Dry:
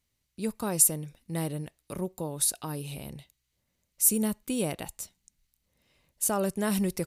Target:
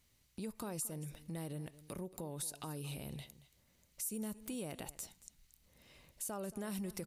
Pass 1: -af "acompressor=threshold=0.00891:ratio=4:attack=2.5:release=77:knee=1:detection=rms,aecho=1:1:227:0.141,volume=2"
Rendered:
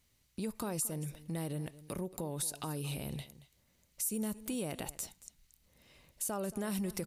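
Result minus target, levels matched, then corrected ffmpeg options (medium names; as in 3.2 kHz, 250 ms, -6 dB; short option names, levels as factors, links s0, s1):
compression: peak gain reduction -5 dB
-af "acompressor=threshold=0.00398:ratio=4:attack=2.5:release=77:knee=1:detection=rms,aecho=1:1:227:0.141,volume=2"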